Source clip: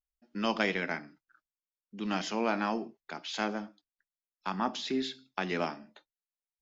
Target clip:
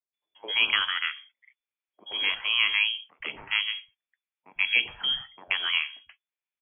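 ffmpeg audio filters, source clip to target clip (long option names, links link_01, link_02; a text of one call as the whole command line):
ffmpeg -i in.wav -filter_complex "[0:a]equalizer=frequency=1100:width=2.5:gain=9,lowpass=frequency=3000:width_type=q:width=0.5098,lowpass=frequency=3000:width_type=q:width=0.6013,lowpass=frequency=3000:width_type=q:width=0.9,lowpass=frequency=3000:width_type=q:width=2.563,afreqshift=-3500,acrossover=split=160|800[link_01][link_02][link_03];[link_01]adelay=100[link_04];[link_03]adelay=130[link_05];[link_04][link_02][link_05]amix=inputs=3:normalize=0,volume=3.5dB" out.wav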